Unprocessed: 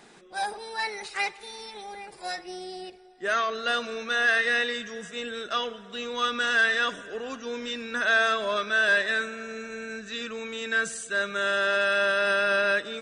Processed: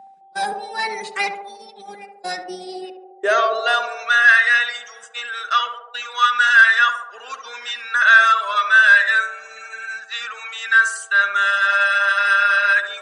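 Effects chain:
noise gate −39 dBFS, range −25 dB
steady tone 780 Hz −47 dBFS
reverb reduction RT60 1.2 s
high-pass filter sweep 180 Hz → 1,300 Hz, 0:02.44–0:04.08
feedback echo with a band-pass in the loop 70 ms, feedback 77%, band-pass 550 Hz, level −5 dB
level +6 dB

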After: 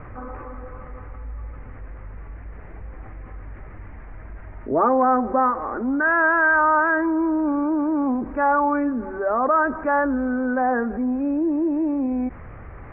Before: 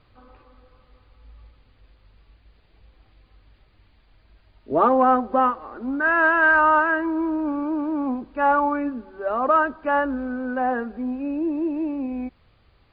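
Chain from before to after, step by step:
Butterworth low-pass 2,100 Hz 48 dB per octave
envelope flattener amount 50%
level −1.5 dB

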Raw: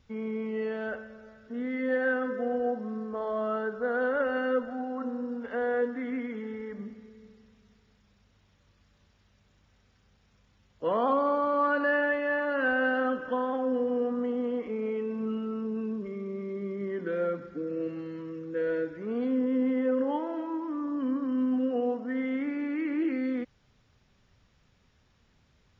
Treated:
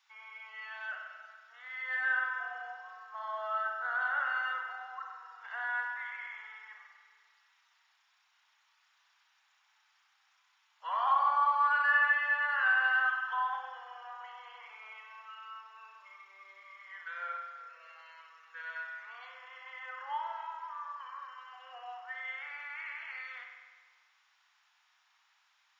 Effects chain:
Butterworth high-pass 830 Hz 48 dB per octave
spring reverb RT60 1.5 s, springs 46 ms, chirp 75 ms, DRR 1.5 dB

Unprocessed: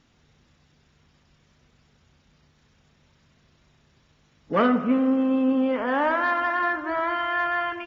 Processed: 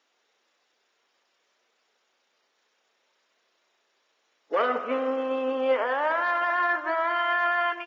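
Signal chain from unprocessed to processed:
high-pass filter 420 Hz 24 dB per octave
brickwall limiter −20.5 dBFS, peak gain reduction 8 dB
expander for the loud parts 1.5 to 1, over −45 dBFS
level +5.5 dB

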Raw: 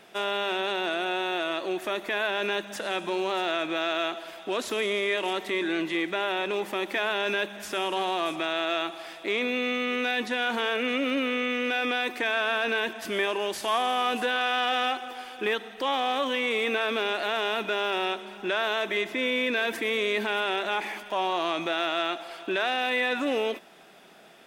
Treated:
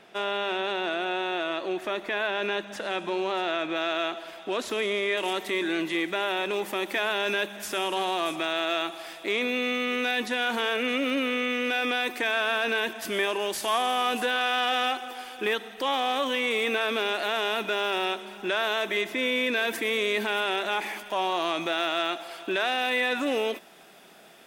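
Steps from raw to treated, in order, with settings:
high-shelf EQ 7,300 Hz −9.5 dB, from 0:03.76 −3.5 dB, from 0:05.17 +8 dB

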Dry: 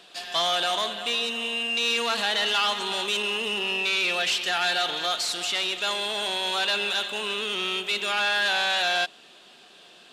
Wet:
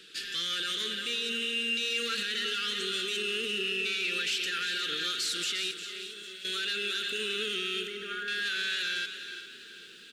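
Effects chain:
Chebyshev band-stop filter 450–1,400 Hz, order 3
brickwall limiter −24 dBFS, peak gain reduction 9.5 dB
0:05.71–0:06.45: tuned comb filter 380 Hz, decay 0.85 s, mix 80%
0:07.87–0:08.28: Savitzky-Golay smoothing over 41 samples
single-tap delay 354 ms −11.5 dB
feedback echo at a low word length 402 ms, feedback 55%, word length 10 bits, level −13.5 dB

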